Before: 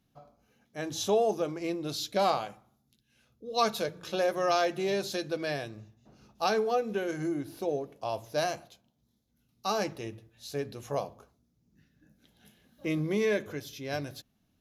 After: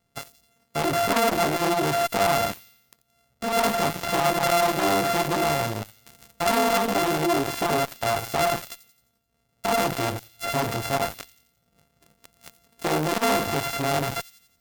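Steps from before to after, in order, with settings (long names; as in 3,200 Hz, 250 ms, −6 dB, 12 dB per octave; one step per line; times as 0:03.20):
samples sorted by size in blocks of 64 samples
high-shelf EQ 2,300 Hz +5 dB
in parallel at −7 dB: fuzz pedal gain 43 dB, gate −48 dBFS
on the sum: delay with a high-pass on its return 87 ms, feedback 50%, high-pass 4,000 Hz, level −14 dB
saturating transformer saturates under 1,300 Hz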